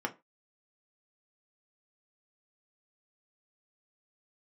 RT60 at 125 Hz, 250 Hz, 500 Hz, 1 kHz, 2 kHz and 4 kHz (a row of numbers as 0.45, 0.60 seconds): 0.20, 0.25, 0.25, 0.25, 0.20, 0.15 seconds